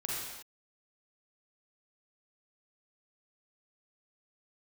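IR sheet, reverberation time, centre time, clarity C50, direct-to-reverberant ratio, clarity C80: not exponential, 94 ms, -3.0 dB, -5.5 dB, 0.5 dB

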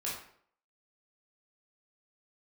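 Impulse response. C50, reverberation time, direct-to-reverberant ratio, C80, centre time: 3.0 dB, 0.60 s, -6.5 dB, 7.0 dB, 45 ms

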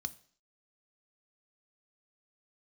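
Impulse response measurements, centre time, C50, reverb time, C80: 2 ms, 20.0 dB, 0.50 s, 23.0 dB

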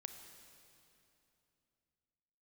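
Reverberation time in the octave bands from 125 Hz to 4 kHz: 3.5, 3.4, 3.0, 2.8, 2.6, 2.5 s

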